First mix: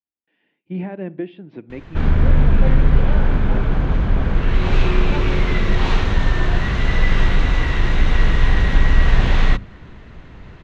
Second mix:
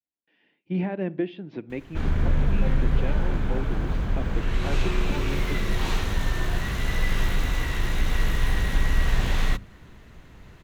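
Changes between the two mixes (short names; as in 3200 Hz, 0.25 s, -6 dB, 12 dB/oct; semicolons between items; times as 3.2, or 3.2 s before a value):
background -8.5 dB; master: remove air absorption 150 m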